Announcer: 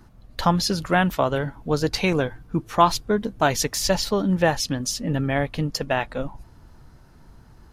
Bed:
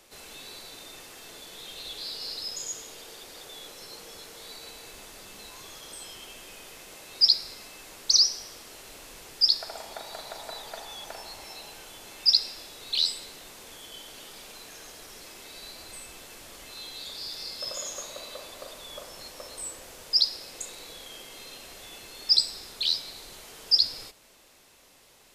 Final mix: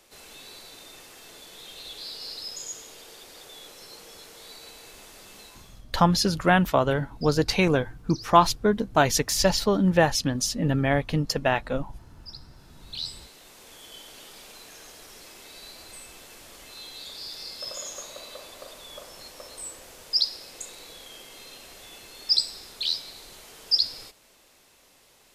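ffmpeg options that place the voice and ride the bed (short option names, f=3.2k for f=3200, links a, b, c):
-filter_complex "[0:a]adelay=5550,volume=0dB[a];[1:a]volume=21dB,afade=t=out:st=5.39:d=0.47:silence=0.0794328,afade=t=in:st=12.5:d=1.43:silence=0.0749894[b];[a][b]amix=inputs=2:normalize=0"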